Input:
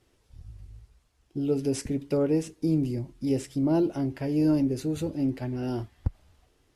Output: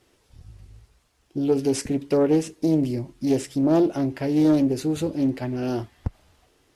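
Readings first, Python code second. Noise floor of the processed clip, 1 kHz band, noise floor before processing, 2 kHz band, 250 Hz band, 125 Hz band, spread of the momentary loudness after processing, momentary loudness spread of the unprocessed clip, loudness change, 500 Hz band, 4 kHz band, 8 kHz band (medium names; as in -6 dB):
-64 dBFS, +7.0 dB, -68 dBFS, +6.5 dB, +4.5 dB, +1.5 dB, 9 LU, 9 LU, +5.0 dB, +6.0 dB, +6.5 dB, +6.0 dB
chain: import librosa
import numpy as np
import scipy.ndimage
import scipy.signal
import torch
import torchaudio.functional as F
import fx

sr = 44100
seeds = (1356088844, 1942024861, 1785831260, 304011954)

y = fx.low_shelf(x, sr, hz=130.0, db=-9.5)
y = fx.doppler_dist(y, sr, depth_ms=0.32)
y = y * librosa.db_to_amplitude(6.5)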